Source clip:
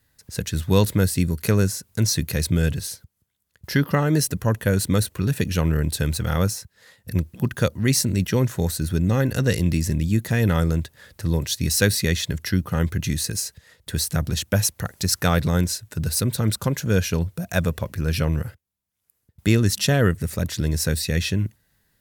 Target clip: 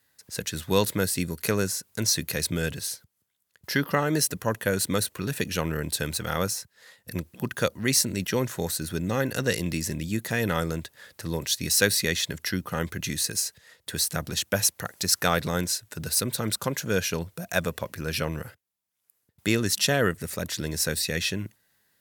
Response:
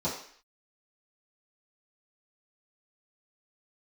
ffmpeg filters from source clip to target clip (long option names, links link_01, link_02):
-af "highpass=frequency=410:poles=1"